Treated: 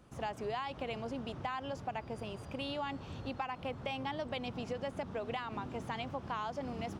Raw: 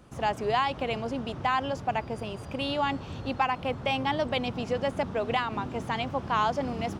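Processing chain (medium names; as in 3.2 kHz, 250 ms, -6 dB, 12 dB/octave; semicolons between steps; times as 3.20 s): compression, threshold -28 dBFS, peak gain reduction 7.5 dB; trim -6.5 dB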